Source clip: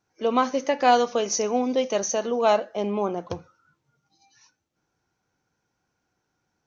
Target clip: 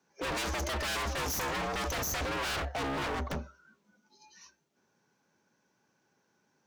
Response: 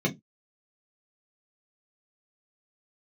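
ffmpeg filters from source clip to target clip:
-af "aeval=exprs='(tanh(39.8*val(0)+0.75)-tanh(0.75))/39.8':c=same,afreqshift=68,aeval=exprs='0.0168*(abs(mod(val(0)/0.0168+3,4)-2)-1)':c=same,volume=2.24"

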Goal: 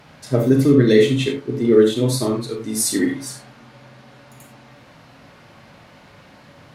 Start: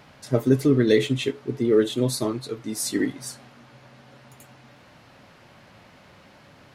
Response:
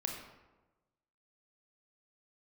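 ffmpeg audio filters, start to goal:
-filter_complex "[0:a]asettb=1/sr,asplit=3[s0][s1][s2];[s0]atrim=end=2.594[s3];[s1]atrim=start=2.59:end=3.06,asetpts=PTS-STARTPTS,afade=t=in:d=0.004:c=qsin,afade=t=out:st=0.466:d=0.004:c=qsin,equalizer=f=10000:w=0.78:g=5.5[s4];[s2]atrim=start=3.056[s5];[s3][s4]acrossfade=d=0.004:c1=hsin:c2=qsin[s6];[s6][s5]acrossfade=d=0.004:c1=qsin:c2=hsin[s7];[1:a]atrim=start_sample=2205,atrim=end_sample=3969,asetrate=38367,aresample=44100[s8];[s7][s8]afir=irnorm=-1:irlink=0,volume=1.41"

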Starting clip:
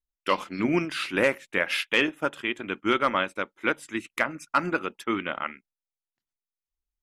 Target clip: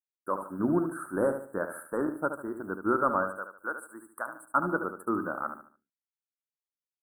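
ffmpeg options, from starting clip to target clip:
-filter_complex "[0:a]asettb=1/sr,asplit=3[s0][s1][s2];[s0]atrim=end=3.304[s3];[s1]atrim=start=3.3:end=4.45,asetpts=PTS-STARTPTS,afade=t=in:d=0.004:c=qsin,afade=t=out:st=1.146:d=0.004:c=qsin,highpass=f=1400:p=1[s4];[s2]atrim=start=4.446[s5];[s3][s4]acrossfade=d=0.004:c1=hsin:c2=qsin[s6];[s6][s5]acrossfade=d=0.004:c1=qsin:c2=hsin,agate=range=0.0224:threshold=0.00562:ratio=3:detection=peak,dynaudnorm=f=170:g=5:m=2.11,acrusher=bits=8:mix=0:aa=0.000001,asuperstop=centerf=3700:order=20:qfactor=0.55,aecho=1:1:73|146|219|292:0.376|0.132|0.046|0.0161,volume=0.398"

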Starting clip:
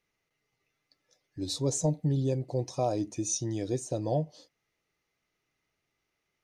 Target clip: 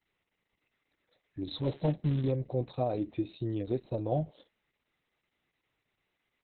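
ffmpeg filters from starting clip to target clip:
-filter_complex "[0:a]asplit=3[s0][s1][s2];[s0]afade=t=out:st=1.55:d=0.02[s3];[s1]acrusher=bits=5:mode=log:mix=0:aa=0.000001,afade=t=in:st=1.55:d=0.02,afade=t=out:st=2.3:d=0.02[s4];[s2]afade=t=in:st=2.3:d=0.02[s5];[s3][s4][s5]amix=inputs=3:normalize=0" -ar 48000 -c:a libopus -b:a 6k

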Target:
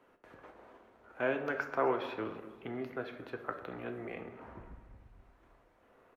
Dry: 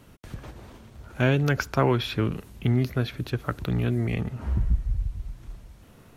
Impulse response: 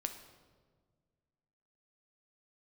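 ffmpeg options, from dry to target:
-filter_complex "[0:a]acrossover=split=330 2200:gain=0.0631 1 0.112[s0][s1][s2];[s0][s1][s2]amix=inputs=3:normalize=0,aecho=1:1:245|490|735:0.133|0.0493|0.0183[s3];[1:a]atrim=start_sample=2205,asetrate=74970,aresample=44100[s4];[s3][s4]afir=irnorm=-1:irlink=0"

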